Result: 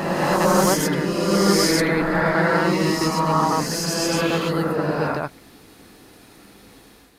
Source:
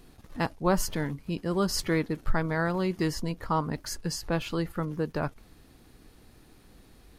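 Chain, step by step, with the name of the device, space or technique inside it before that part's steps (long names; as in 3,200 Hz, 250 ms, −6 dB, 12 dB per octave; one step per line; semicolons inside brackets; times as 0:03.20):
ghost voice (reversed playback; convolution reverb RT60 2.2 s, pre-delay 78 ms, DRR −6.5 dB; reversed playback; high-pass filter 310 Hz 6 dB per octave)
level +5 dB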